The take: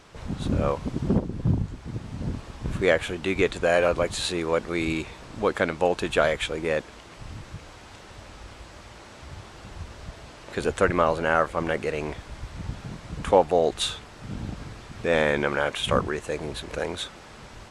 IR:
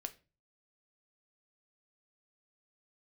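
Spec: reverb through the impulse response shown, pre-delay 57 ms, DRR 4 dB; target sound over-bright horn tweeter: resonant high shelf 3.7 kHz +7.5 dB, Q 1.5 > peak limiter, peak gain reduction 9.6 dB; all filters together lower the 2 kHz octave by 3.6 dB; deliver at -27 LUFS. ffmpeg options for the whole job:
-filter_complex "[0:a]equalizer=f=2000:t=o:g=-3,asplit=2[s0][s1];[1:a]atrim=start_sample=2205,adelay=57[s2];[s1][s2]afir=irnorm=-1:irlink=0,volume=0.841[s3];[s0][s3]amix=inputs=2:normalize=0,highshelf=f=3700:t=q:w=1.5:g=7.5,volume=1.06,alimiter=limit=0.211:level=0:latency=1"

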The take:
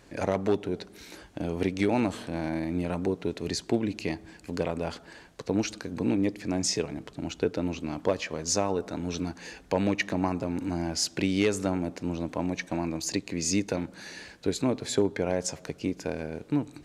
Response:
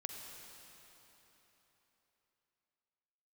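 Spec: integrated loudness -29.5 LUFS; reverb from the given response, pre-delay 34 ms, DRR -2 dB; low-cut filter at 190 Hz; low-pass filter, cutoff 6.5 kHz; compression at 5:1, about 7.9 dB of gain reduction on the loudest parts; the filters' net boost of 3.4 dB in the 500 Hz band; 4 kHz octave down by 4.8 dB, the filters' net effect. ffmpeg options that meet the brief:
-filter_complex "[0:a]highpass=190,lowpass=6500,equalizer=f=500:t=o:g=4.5,equalizer=f=4000:t=o:g=-5.5,acompressor=threshold=0.0501:ratio=5,asplit=2[s0][s1];[1:a]atrim=start_sample=2205,adelay=34[s2];[s1][s2]afir=irnorm=-1:irlink=0,volume=1.5[s3];[s0][s3]amix=inputs=2:normalize=0,volume=0.944"

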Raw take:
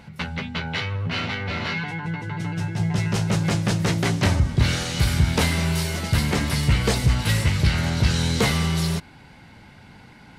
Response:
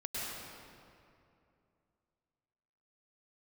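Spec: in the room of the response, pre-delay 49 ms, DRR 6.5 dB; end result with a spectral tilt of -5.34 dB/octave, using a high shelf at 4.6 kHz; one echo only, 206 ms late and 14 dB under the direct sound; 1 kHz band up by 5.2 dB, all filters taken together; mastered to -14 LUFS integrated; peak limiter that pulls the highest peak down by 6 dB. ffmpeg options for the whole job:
-filter_complex "[0:a]equalizer=f=1000:t=o:g=7,highshelf=f=4600:g=-7.5,alimiter=limit=0.224:level=0:latency=1,aecho=1:1:206:0.2,asplit=2[s0][s1];[1:a]atrim=start_sample=2205,adelay=49[s2];[s1][s2]afir=irnorm=-1:irlink=0,volume=0.316[s3];[s0][s3]amix=inputs=2:normalize=0,volume=2.51"

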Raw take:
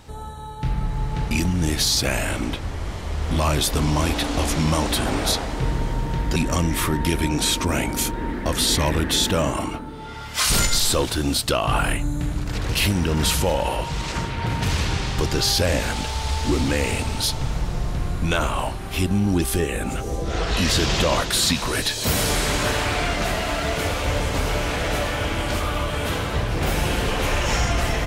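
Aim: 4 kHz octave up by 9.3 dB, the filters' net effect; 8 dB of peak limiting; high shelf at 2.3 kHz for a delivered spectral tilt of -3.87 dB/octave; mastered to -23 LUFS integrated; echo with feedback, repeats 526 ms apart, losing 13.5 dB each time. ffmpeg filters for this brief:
-af "highshelf=f=2300:g=4,equalizer=f=4000:t=o:g=7.5,alimiter=limit=0.355:level=0:latency=1,aecho=1:1:526|1052:0.211|0.0444,volume=0.668"

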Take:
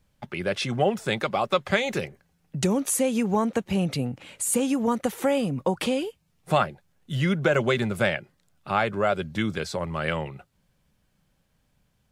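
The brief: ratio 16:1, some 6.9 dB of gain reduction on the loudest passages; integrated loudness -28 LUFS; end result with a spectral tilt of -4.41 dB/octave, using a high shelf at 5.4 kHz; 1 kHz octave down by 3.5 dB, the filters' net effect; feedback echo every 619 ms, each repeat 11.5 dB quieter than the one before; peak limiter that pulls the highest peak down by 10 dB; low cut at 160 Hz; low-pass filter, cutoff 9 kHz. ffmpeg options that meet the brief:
-af "highpass=160,lowpass=9000,equalizer=f=1000:t=o:g=-5,highshelf=f=5400:g=3,acompressor=threshold=0.0562:ratio=16,alimiter=limit=0.0708:level=0:latency=1,aecho=1:1:619|1238|1857:0.266|0.0718|0.0194,volume=1.88"

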